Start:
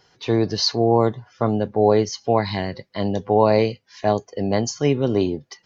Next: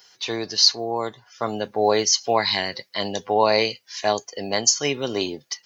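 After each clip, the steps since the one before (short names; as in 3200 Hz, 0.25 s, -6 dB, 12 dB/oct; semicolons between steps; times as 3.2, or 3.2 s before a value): tilt +4.5 dB/oct; AGC gain up to 3 dB; gain -1 dB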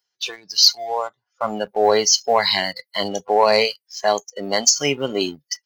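spectral noise reduction 23 dB; sample leveller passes 1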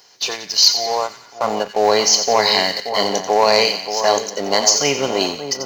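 per-bin compression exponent 0.6; split-band echo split 1500 Hz, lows 0.579 s, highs 89 ms, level -9 dB; ending taper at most 330 dB/s; gain -1 dB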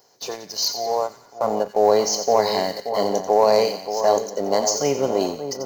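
EQ curve 320 Hz 0 dB, 570 Hz +2 dB, 2800 Hz -15 dB, 14000 Hz +1 dB; gain -1.5 dB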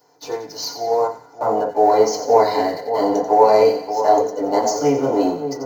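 FDN reverb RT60 0.31 s, low-frequency decay 0.9×, high-frequency decay 0.25×, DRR -8.5 dB; gain -7 dB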